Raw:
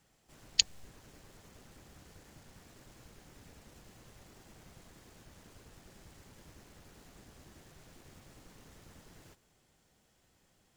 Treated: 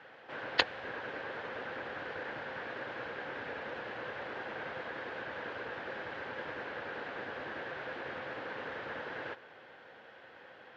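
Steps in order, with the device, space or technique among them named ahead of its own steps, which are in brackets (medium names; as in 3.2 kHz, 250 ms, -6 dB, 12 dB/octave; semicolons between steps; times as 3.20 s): overdrive pedal into a guitar cabinet (overdrive pedal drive 26 dB, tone 2.3 kHz, clips at -3 dBFS; cabinet simulation 93–3500 Hz, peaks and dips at 180 Hz -7 dB, 510 Hz +9 dB, 880 Hz +3 dB, 1.6 kHz +10 dB)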